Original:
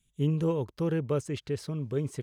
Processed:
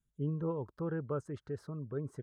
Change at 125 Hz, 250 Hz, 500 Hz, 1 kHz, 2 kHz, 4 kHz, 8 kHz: −8.0 dB, −8.0 dB, −7.5 dB, −4.5 dB, −7.0 dB, below −20 dB, below −15 dB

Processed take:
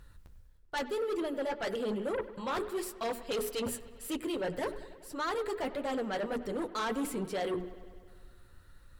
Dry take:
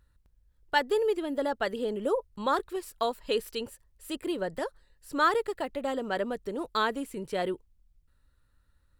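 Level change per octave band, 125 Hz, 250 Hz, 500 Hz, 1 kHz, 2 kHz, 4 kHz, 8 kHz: +1.0, −1.5, −4.0, −7.0, −6.5, −5.0, +3.5 decibels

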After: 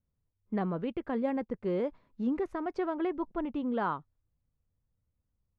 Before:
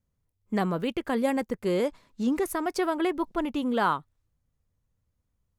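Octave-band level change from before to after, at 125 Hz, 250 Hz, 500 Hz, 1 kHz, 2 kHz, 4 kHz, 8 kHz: −4.0 dB, −4.5 dB, −5.0 dB, −7.0 dB, −9.5 dB, −15.0 dB, below −30 dB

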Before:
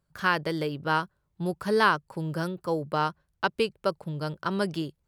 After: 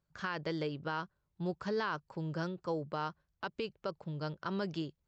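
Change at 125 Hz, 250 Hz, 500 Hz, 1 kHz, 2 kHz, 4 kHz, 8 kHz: −7.0 dB, −7.5 dB, −9.5 dB, −12.0 dB, −12.5 dB, −10.5 dB, below −10 dB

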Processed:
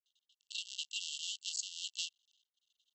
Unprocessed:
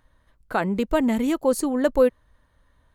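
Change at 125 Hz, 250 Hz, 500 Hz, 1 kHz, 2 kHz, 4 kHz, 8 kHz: below −40 dB, below −40 dB, below −40 dB, below −40 dB, −16.5 dB, +4.0 dB, −3.0 dB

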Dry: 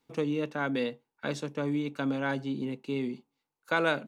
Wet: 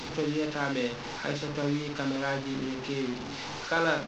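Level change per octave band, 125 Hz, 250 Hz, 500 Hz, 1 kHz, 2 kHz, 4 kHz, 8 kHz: +1.5, −0.5, +1.0, +2.0, +1.5, +5.5, +8.5 decibels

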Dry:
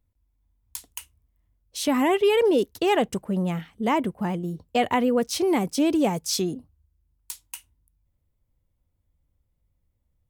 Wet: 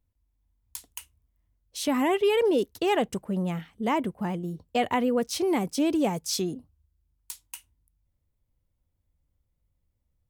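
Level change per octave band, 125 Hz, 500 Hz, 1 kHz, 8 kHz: −3.0, −3.0, −3.0, −3.0 decibels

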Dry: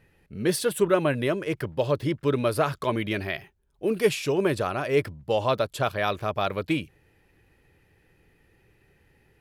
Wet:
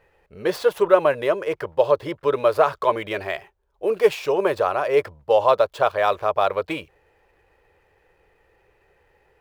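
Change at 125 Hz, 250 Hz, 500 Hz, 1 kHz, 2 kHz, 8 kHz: −9.0 dB, −4.0 dB, +6.0 dB, +7.5 dB, +2.0 dB, can't be measured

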